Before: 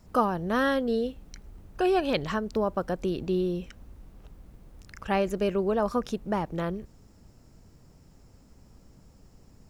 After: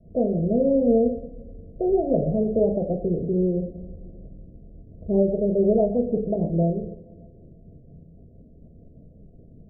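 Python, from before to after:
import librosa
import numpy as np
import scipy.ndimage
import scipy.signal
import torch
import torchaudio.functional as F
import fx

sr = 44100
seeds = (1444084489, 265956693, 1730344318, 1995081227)

y = fx.formant_shift(x, sr, semitones=2)
y = scipy.signal.sosfilt(scipy.signal.cheby1(6, 3, 700.0, 'lowpass', fs=sr, output='sos'), y)
y = fx.rev_double_slope(y, sr, seeds[0], early_s=0.65, late_s=2.3, knee_db=-18, drr_db=2.0)
y = fx.rotary_switch(y, sr, hz=0.7, then_hz=6.3, switch_at_s=4.31)
y = y * 10.0 ** (7.5 / 20.0)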